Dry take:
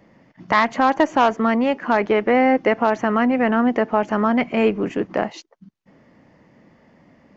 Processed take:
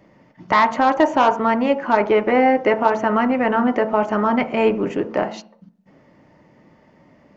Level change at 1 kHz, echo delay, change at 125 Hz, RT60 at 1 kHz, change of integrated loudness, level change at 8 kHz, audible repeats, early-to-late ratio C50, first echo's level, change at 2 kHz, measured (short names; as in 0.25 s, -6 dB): +2.0 dB, none, -0.5 dB, 0.45 s, +1.0 dB, n/a, none, 14.0 dB, none, 0.0 dB